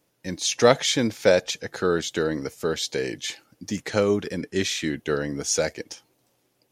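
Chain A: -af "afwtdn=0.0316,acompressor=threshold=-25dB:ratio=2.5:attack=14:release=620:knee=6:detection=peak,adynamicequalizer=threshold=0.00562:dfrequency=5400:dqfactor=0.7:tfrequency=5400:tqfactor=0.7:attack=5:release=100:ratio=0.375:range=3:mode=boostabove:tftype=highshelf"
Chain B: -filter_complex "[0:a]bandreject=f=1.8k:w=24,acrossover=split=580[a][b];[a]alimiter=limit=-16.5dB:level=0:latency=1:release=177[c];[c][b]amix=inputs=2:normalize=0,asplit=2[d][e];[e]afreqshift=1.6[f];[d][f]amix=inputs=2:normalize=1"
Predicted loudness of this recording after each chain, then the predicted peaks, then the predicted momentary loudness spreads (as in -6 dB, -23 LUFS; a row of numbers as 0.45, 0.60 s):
-29.5, -28.0 LUFS; -11.5, -9.5 dBFS; 13, 13 LU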